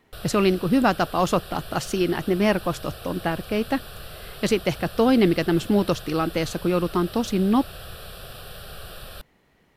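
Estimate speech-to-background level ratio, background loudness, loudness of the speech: 16.0 dB, -39.5 LUFS, -23.5 LUFS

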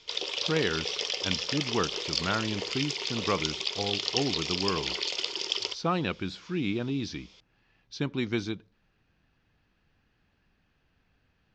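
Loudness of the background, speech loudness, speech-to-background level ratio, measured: -30.5 LUFS, -32.5 LUFS, -2.0 dB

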